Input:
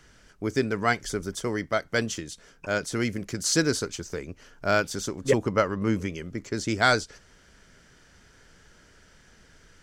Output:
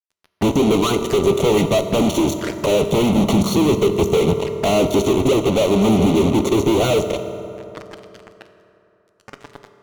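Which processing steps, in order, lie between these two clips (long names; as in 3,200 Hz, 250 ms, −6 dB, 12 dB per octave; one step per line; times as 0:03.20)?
rippled gain that drifts along the octave scale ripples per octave 0.5, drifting +0.71 Hz, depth 9 dB
de-essing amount 80%
high-pass filter 70 Hz 12 dB per octave
parametric band 770 Hz −13.5 dB 0.21 octaves
harmonic and percussive parts rebalanced percussive +9 dB
low-shelf EQ 330 Hz −8 dB
downward compressor 6 to 1, threshold −28 dBFS, peak gain reduction 17.5 dB
leveller curve on the samples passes 2
Savitzky-Golay smoothing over 65 samples
fuzz pedal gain 49 dB, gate −46 dBFS
flanger swept by the level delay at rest 11.3 ms, full sweep at −18.5 dBFS
on a send: convolution reverb RT60 3.1 s, pre-delay 3 ms, DRR 7.5 dB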